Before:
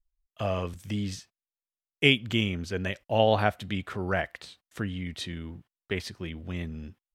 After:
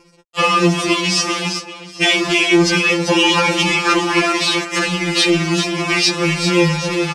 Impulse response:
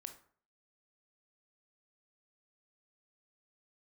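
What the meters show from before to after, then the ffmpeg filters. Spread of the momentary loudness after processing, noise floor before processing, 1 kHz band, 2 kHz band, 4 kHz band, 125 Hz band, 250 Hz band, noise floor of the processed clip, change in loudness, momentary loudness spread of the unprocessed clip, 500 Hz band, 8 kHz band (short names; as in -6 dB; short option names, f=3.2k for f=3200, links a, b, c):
6 LU, under -85 dBFS, +14.5 dB, +16.0 dB, +17.0 dB, +9.5 dB, +15.5 dB, -40 dBFS, +14.5 dB, 17 LU, +11.0 dB, +26.0 dB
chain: -af "afftfilt=real='re*lt(hypot(re,im),0.141)':imag='im*lt(hypot(re,im),0.141)':win_size=1024:overlap=0.75,lowshelf=f=300:g=12,acompressor=threshold=-32dB:ratio=16,asoftclip=type=tanh:threshold=-37.5dB,aecho=1:1:391|782|1173|1564|1955|2346:0.355|0.174|0.0852|0.0417|0.0205|0.01,acrusher=bits=9:dc=4:mix=0:aa=0.000001,flanger=delay=2.1:depth=1.3:regen=20:speed=0.3:shape=sinusoidal,highpass=110,equalizer=f=280:t=q:w=4:g=6,equalizer=f=420:t=q:w=4:g=5,equalizer=f=1.1k:t=q:w=4:g=7,equalizer=f=2.5k:t=q:w=4:g=9,equalizer=f=5.3k:t=q:w=4:g=7,lowpass=f=8.9k:w=0.5412,lowpass=f=8.9k:w=1.3066,alimiter=level_in=35dB:limit=-1dB:release=50:level=0:latency=1,afftfilt=real='re*2.83*eq(mod(b,8),0)':imag='im*2.83*eq(mod(b,8),0)':win_size=2048:overlap=0.75,volume=-1dB"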